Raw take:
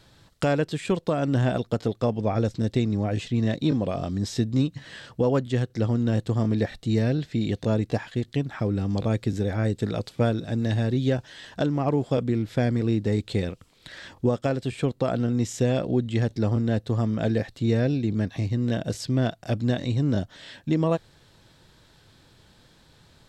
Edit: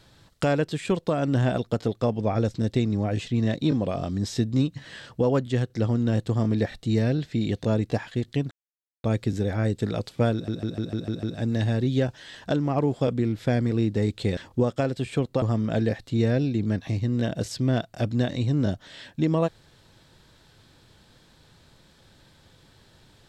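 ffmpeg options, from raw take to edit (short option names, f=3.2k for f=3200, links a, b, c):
-filter_complex "[0:a]asplit=11[a][b][c][d][e][f][g][h][i][j][k];[a]atrim=end=8.51,asetpts=PTS-STARTPTS,afade=t=out:st=8.506:d=0.004:c=hsin[l];[b]atrim=start=8.51:end=9.04,asetpts=PTS-STARTPTS,volume=0[m];[c]atrim=start=9.04:end=10.482,asetpts=PTS-STARTPTS,afade=t=in:d=0.004:c=hsin[n];[d]atrim=start=10.328:end=10.482[o];[e]atrim=start=10.328:end=10.482[p];[f]atrim=start=10.328:end=10.482[q];[g]atrim=start=10.328:end=10.482[r];[h]atrim=start=10.328:end=10.482[s];[i]atrim=start=10.328:end=13.472[t];[j]atrim=start=14.028:end=15.082[u];[k]atrim=start=16.908[v];[l][m][n]concat=n=3:v=0:a=1[w];[w][o]acrossfade=d=0.004:c1=hsin:c2=hsin[x];[x][p]acrossfade=d=0.004:c1=hsin:c2=hsin[y];[y][q]acrossfade=d=0.004:c1=hsin:c2=hsin[z];[z][r]acrossfade=d=0.004:c1=hsin:c2=hsin[aa];[aa][s]acrossfade=d=0.004:c1=hsin:c2=hsin[ab];[ab][t]acrossfade=d=0.004:c1=hsin:c2=hsin[ac];[ac][u]acrossfade=d=0.004:c1=hsin:c2=hsin[ad];[ad][v]acrossfade=d=0.004:c1=hsin:c2=hsin"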